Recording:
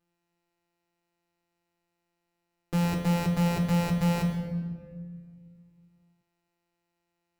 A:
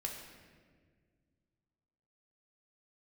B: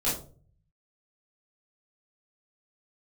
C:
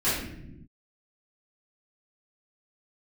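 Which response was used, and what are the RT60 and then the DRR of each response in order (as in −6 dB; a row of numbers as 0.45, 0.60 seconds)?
A; 1.7 s, 0.45 s, non-exponential decay; 0.5, −9.5, −13.5 decibels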